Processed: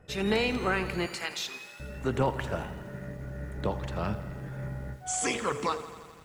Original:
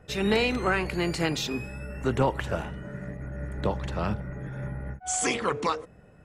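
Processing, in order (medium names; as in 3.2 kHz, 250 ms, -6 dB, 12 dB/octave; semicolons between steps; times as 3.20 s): 1.06–1.80 s: high-pass 950 Hz 12 dB/octave; bit-crushed delay 84 ms, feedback 80%, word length 8-bit, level -15 dB; trim -3 dB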